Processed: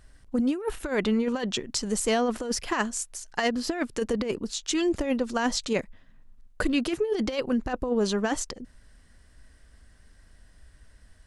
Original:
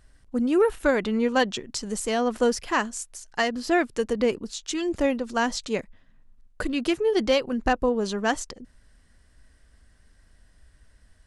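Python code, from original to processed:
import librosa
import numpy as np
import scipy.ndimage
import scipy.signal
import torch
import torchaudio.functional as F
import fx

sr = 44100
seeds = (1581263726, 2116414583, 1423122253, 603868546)

y = fx.over_compress(x, sr, threshold_db=-24.0, ratio=-0.5)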